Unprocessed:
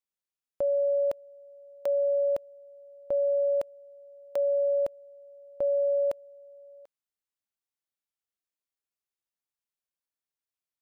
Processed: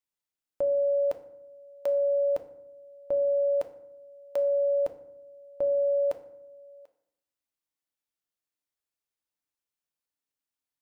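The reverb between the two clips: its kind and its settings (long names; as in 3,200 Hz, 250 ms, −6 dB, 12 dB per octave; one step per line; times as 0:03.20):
feedback delay network reverb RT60 0.75 s, low-frequency decay 1.5×, high-frequency decay 0.6×, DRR 7.5 dB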